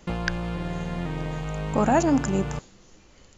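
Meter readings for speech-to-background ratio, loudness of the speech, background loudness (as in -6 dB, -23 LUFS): 6.5 dB, -25.0 LUFS, -31.5 LUFS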